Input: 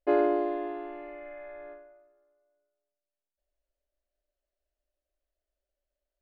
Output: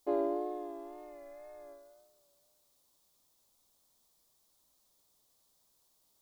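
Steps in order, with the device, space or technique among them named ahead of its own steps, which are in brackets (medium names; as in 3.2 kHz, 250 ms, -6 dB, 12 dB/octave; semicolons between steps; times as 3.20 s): noise-reduction cassette on a plain deck (tape noise reduction on one side only encoder only; wow and flutter; white noise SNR 29 dB); high-order bell 2 kHz -11 dB 1.3 oct; trim -7.5 dB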